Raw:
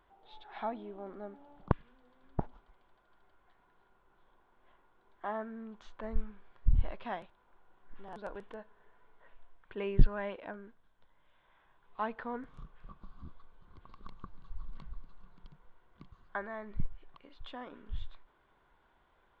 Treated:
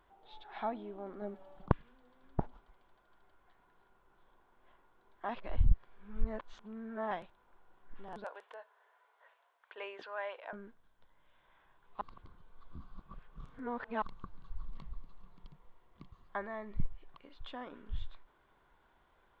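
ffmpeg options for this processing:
-filter_complex "[0:a]asettb=1/sr,asplit=3[a][b][c];[a]atrim=end=1.214[d];[b]atrim=start=1.21:end=1.66,asetpts=PTS-STARTPTS,afade=t=in:d=0.004:c=qsin,afade=t=out:st=0.446:d=0.004:c=qsin,aecho=1:1:5.3:0.86,atrim=end_sample=19845[e];[c]atrim=start=1.656[f];[d][e]acrossfade=d=0.004:c1=hsin:c2=qsin[g];[g][f]acrossfade=d=0.004:c1=qsin:c2=hsin,asettb=1/sr,asplit=3[h][i][j];[h]atrim=end=8.244[k];[i]atrim=start=8.24:end=10.53,asetpts=PTS-STARTPTS,afade=t=in:d=0.004:c=qsin,afade=t=out:st=2.286:d=0.004:c=qsin,highpass=f=550:w=0.5412,highpass=f=550:w=1.3066[l];[j]atrim=start=10.526[m];[k][l]acrossfade=d=0.004:c1=hsin:c2=qsin[n];[n][m]acrossfade=d=0.004:c1=qsin:c2=hsin,asettb=1/sr,asplit=3[o][p][q];[o]atrim=end=14.684[r];[p]atrim=start=14.68:end=17.08,asetpts=PTS-STARTPTS,afade=t=in:d=0.004:c=qsin,afade=t=out:st=2.396:d=0.004:c=qsin,bandreject=f=1.5k:w=7.1[s];[q]atrim=start=17.076[t];[r][s]acrossfade=d=0.004:c1=hsin:c2=qsin[u];[u][t]acrossfade=d=0.004:c1=qsin:c2=hsin,asplit=5[v][w][x][y][z];[v]atrim=end=5.292[aa];[w]atrim=start=5.288:end=7.112,asetpts=PTS-STARTPTS,areverse[ab];[x]atrim=start=7.108:end=12.012[ac];[y]atrim=start=12.008:end=14.022,asetpts=PTS-STARTPTS,areverse[ad];[z]atrim=start=14.018[ae];[aa][ab]acrossfade=d=0.004:c1=hsin:c2=hsin[af];[af][ac]acrossfade=d=0.004:c1=hsin:c2=hsin[ag];[ag][ad]acrossfade=d=0.004:c1=hsin:c2=hsin[ah];[ah][ae]acrossfade=d=0.004:c1=hsin:c2=hsin"

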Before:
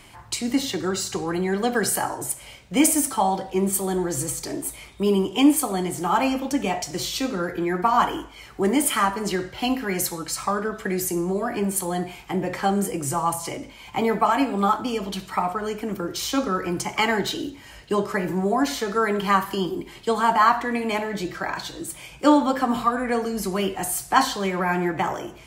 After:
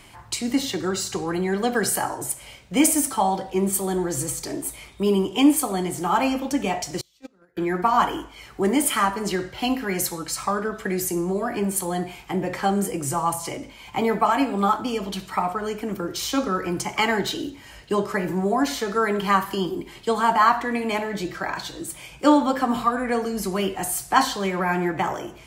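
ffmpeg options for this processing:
-filter_complex "[0:a]asettb=1/sr,asplit=3[a][b][c];[a]atrim=end=7.014[d];[b]atrim=start=7.01:end=7.57,asetpts=PTS-STARTPTS,afade=t=in:d=0.004:c=qsin,afade=t=out:st=0.556:d=0.004:c=qsin,agate=range=-34dB:threshold=-21dB:ratio=16:release=100:detection=peak[e];[c]atrim=start=7.566[f];[d][e]acrossfade=d=0.004:c1=hsin:c2=qsin[g];[g][f]acrossfade=d=0.004:c1=qsin:c2=hsin"

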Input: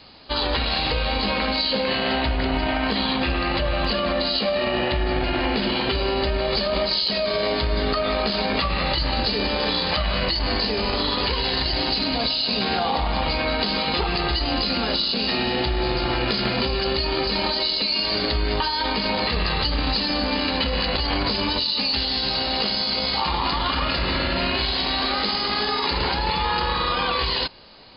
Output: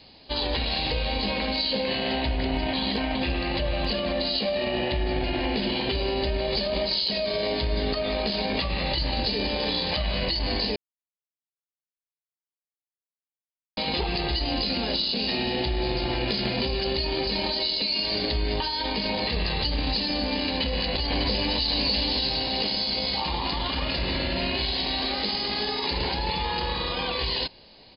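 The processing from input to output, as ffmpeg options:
-filter_complex "[0:a]asplit=2[a][b];[b]afade=t=in:st=20.5:d=0.01,afade=t=out:st=21.67:d=0.01,aecho=0:1:600|1200|1800|2400|3000:0.630957|0.252383|0.100953|0.0403813|0.0161525[c];[a][c]amix=inputs=2:normalize=0,asplit=5[d][e][f][g][h];[d]atrim=end=2.732[i];[e]atrim=start=2.728:end=3.152,asetpts=PTS-STARTPTS,areverse[j];[f]atrim=start=3.148:end=10.76,asetpts=PTS-STARTPTS,afade=t=out:st=7.608:d=0.004:c=hsin[k];[g]atrim=start=10.76:end=13.77,asetpts=PTS-STARTPTS,volume=0[l];[h]atrim=start=13.77,asetpts=PTS-STARTPTS,afade=t=in:d=0.004:c=hsin[m];[i][j]acrossfade=d=0.004:c1=hsin:c2=hsin[n];[k][l][m]concat=n=3:v=0:a=1[o];[n][o]acrossfade=d=0.004:c1=hsin:c2=hsin,equalizer=f=1.3k:t=o:w=0.56:g=-12,volume=-3dB"

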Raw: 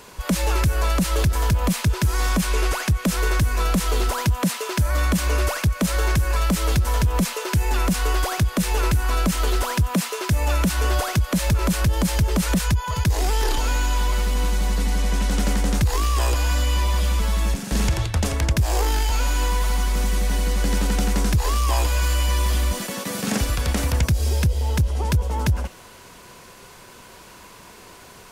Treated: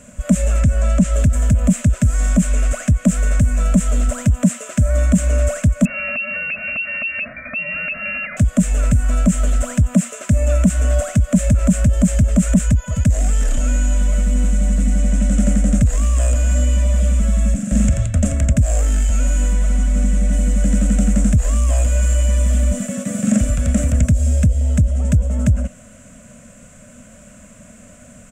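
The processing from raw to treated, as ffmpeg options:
-filter_complex "[0:a]asettb=1/sr,asplit=3[a][b][c];[a]atrim=end=0.594[d];[b]atrim=start=0.59:end=1.14,asetpts=PTS-STARTPTS,afade=t=in:d=0.004:c=qsin,afade=t=out:st=0.546:d=0.004:c=qsin,acrossover=split=8100[e][f];[f]acompressor=threshold=-45dB:ratio=4:attack=1:release=60[g];[e][g]amix=inputs=2:normalize=0[h];[c]atrim=start=1.136[i];[d][h]acrossfade=d=0.004:c1=hsin:c2=qsin[j];[j][i]acrossfade=d=0.004:c1=qsin:c2=hsin,asettb=1/sr,asplit=3[k][l][m];[k]atrim=end=5.854[n];[l]atrim=start=5.85:end=8.37,asetpts=PTS-STARTPTS,afade=t=in:d=0.004:c=qsin,afade=t=out:st=2.516:d=0.004:c=qsin,lowpass=f=2.4k:t=q:w=0.5098,lowpass=f=2.4k:t=q:w=0.6013,lowpass=f=2.4k:t=q:w=0.9,lowpass=f=2.4k:t=q:w=2.563,afreqshift=-2800[o];[m]atrim=start=8.366[p];[n][o]acrossfade=d=0.004:c1=hsin:c2=qsin[q];[q][p]acrossfade=d=0.004:c1=qsin:c2=hsin,asettb=1/sr,asplit=3[r][s][t];[r]atrim=end=19.534[u];[s]atrim=start=19.53:end=20.33,asetpts=PTS-STARTPTS,afade=t=in:d=0.004:c=qsin,afade=t=out:st=0.796:d=0.004:c=qsin,highshelf=f=9.3k:g=-7[v];[t]atrim=start=20.326[w];[u][v]acrossfade=d=0.004:c1=hsin:c2=qsin[x];[x][w]acrossfade=d=0.004:c1=qsin:c2=hsin,firequalizer=gain_entry='entry(160,0);entry(240,8);entry(360,-25);entry(600,4);entry(860,-25);entry(1300,-9);entry(2700,-11);entry(4500,-23);entry(7500,4);entry(11000,-18)':delay=0.05:min_phase=1,acontrast=53"

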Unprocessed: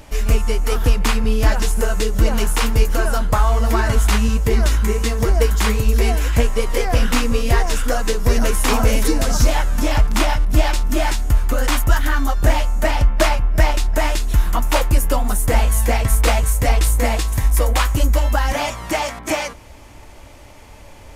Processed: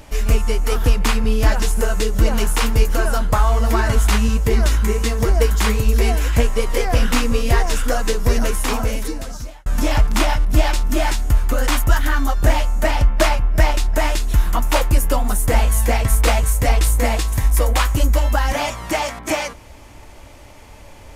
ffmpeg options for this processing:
-filter_complex "[0:a]asplit=2[a][b];[a]atrim=end=9.66,asetpts=PTS-STARTPTS,afade=t=out:st=8.18:d=1.48[c];[b]atrim=start=9.66,asetpts=PTS-STARTPTS,afade=t=in:d=0.004:c=hsin[d];[c][d]concat=n=2:v=0:a=1"

